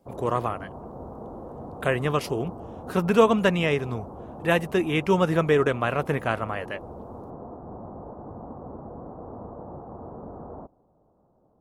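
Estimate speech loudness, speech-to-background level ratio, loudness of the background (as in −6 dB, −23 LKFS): −24.5 LKFS, 16.0 dB, −40.5 LKFS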